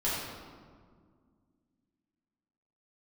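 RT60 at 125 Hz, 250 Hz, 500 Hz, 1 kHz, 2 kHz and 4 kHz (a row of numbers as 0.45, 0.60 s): 2.6, 3.0, 2.0, 1.7, 1.3, 1.0 s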